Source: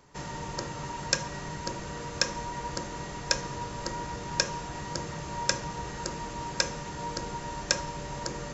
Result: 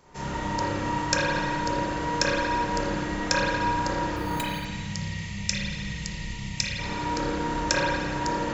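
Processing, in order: 4.16–4.65 s: careless resampling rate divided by 8×, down filtered, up hold; 4.39–6.79 s: time-frequency box 220–1800 Hz -19 dB; spring tank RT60 1.8 s, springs 30/55 ms, chirp 30 ms, DRR -8 dB

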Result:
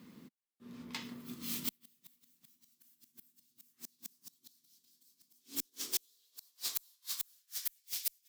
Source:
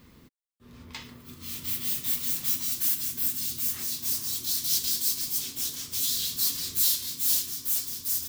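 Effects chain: inverted gate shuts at -20 dBFS, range -37 dB; high-pass sweep 200 Hz -> 2.2 kHz, 5.22–7.88 s; Chebyshev shaper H 4 -43 dB, 5 -27 dB, 7 -20 dB, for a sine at -16.5 dBFS; trim +1 dB

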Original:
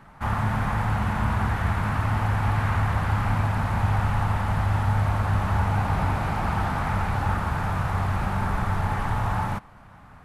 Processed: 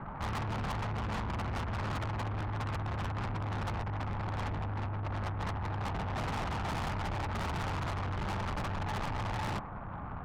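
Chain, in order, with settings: low-pass 1.4 kHz 24 dB/octave; compressor with a negative ratio -27 dBFS, ratio -0.5; valve stage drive 40 dB, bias 0.45; trim +6.5 dB

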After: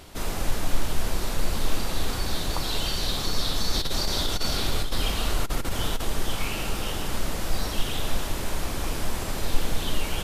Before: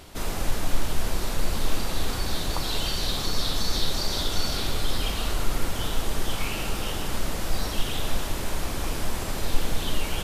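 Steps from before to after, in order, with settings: 3.74–6.05 s: compressor with a negative ratio -21 dBFS, ratio -0.5

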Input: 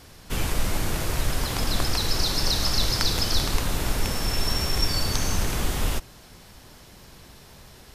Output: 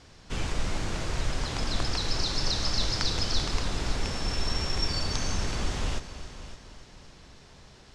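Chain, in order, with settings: low-pass 7.4 kHz 24 dB/octave; multi-head delay 280 ms, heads first and second, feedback 42%, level -15.5 dB; trim -4.5 dB

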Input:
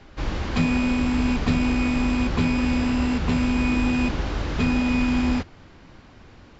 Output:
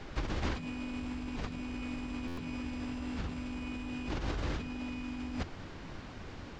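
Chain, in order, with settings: compressor with a negative ratio -31 dBFS, ratio -1; harmony voices +3 st -9 dB; buffer glitch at 2.27 s, samples 512, times 8; trim -7 dB

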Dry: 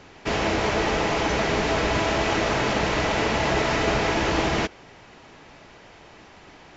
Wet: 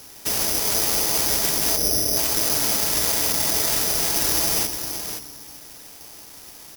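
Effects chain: 1.76–2.17 s: Chebyshev low-pass 620 Hz, order 5; peak limiter -18 dBFS, peak gain reduction 7.5 dB; delay 522 ms -8.5 dB; reverberation RT60 1.8 s, pre-delay 4 ms, DRR 12 dB; careless resampling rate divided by 8×, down none, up zero stuff; trim -4.5 dB

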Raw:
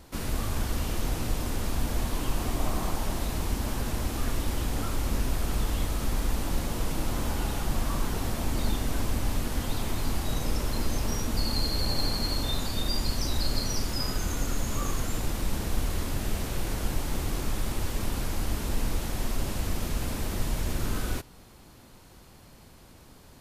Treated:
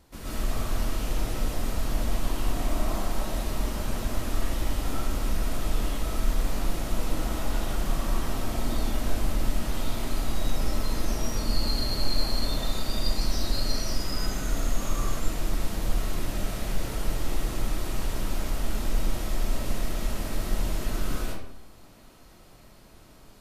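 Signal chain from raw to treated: algorithmic reverb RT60 0.74 s, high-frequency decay 0.7×, pre-delay 85 ms, DRR -7.5 dB; trim -8 dB

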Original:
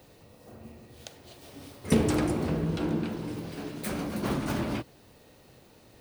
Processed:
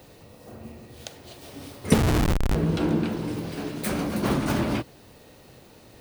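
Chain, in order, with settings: 1.94–2.55 s: Schmitt trigger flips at -22.5 dBFS; trim +5.5 dB

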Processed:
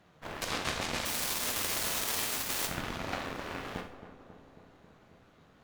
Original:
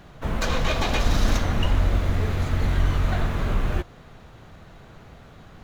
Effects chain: 1.05–2.66 s: spectral contrast reduction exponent 0.24; high-pass 190 Hz 6 dB/octave; peak limiter -17 dBFS, peak gain reduction 11 dB; flange 1.9 Hz, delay 9 ms, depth 6.2 ms, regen +38%; Chebyshev shaper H 3 -9 dB, 5 -31 dB, 6 -23 dB, 7 -29 dB, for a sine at -18.5 dBFS; on a send: filtered feedback delay 271 ms, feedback 71%, low-pass 1.4 kHz, level -11.5 dB; on the sum: Schroeder reverb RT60 0.48 s, combs from 26 ms, DRR 6.5 dB; trim +6 dB

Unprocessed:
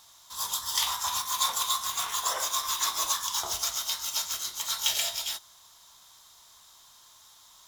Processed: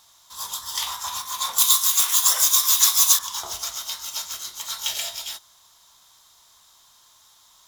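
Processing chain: 1.58–3.19 s: tilt EQ +4.5 dB/octave

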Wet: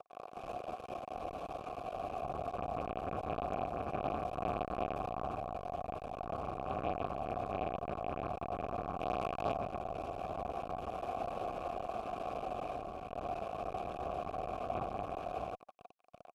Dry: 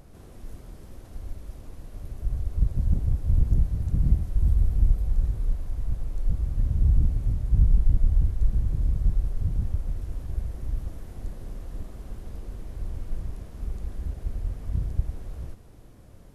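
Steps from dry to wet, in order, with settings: hum notches 50/100/150/200/250/300 Hz; 9.01–9.54 s: waveshaping leveller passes 3; 12.70–13.11 s: compression, threshold -31 dBFS, peak gain reduction 5.5 dB; fuzz box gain 36 dB, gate -43 dBFS; 4.38–5.26 s: power-law waveshaper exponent 0.7; vowel filter a; trim +2.5 dB; Vorbis 192 kbps 48 kHz

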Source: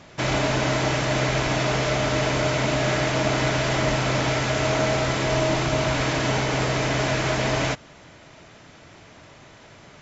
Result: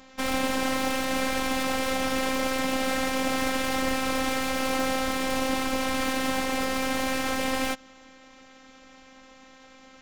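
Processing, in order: tracing distortion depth 0.12 ms; robot voice 262 Hz; trim -1 dB

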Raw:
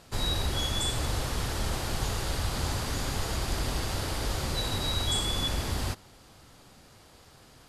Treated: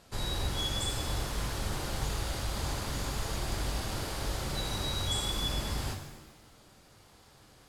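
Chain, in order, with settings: pitch-shifted reverb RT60 1 s, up +7 st, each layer -8 dB, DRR 4.5 dB; trim -5 dB

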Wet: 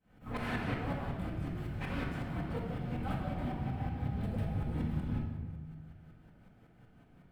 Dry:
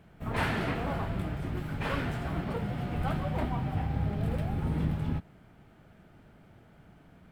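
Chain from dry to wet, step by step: tremolo saw up 5.4 Hz, depth 95%; simulated room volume 1100 m³, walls mixed, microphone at 2 m; trim -5.5 dB

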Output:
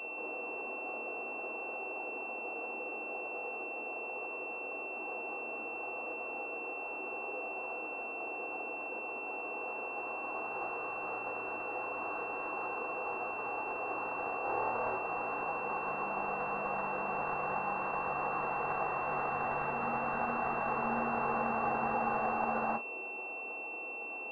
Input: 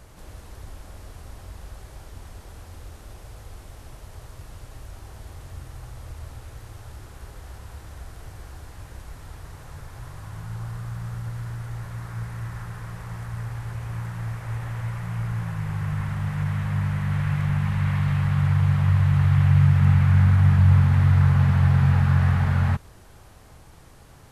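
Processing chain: median filter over 25 samples; high-pass 360 Hz 24 dB/octave; compression 2.5:1, threshold -42 dBFS, peak gain reduction 6.5 dB; 14.41–14.96 s: flutter echo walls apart 4.5 m, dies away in 0.54 s; reverberation RT60 0.20 s, pre-delay 3 ms, DRR -0.5 dB; class-D stage that switches slowly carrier 2.7 kHz

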